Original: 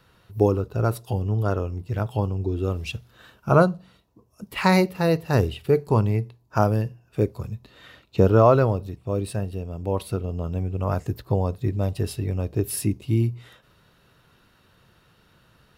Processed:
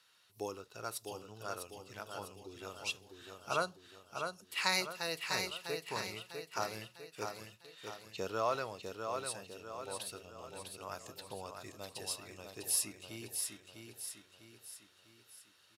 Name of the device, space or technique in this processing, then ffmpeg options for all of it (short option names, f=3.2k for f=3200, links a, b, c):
piezo pickup straight into a mixer: -af "lowpass=7.6k,aderivative,aecho=1:1:651|1302|1953|2604|3255|3906:0.531|0.25|0.117|0.0551|0.0259|0.0122,volume=3dB"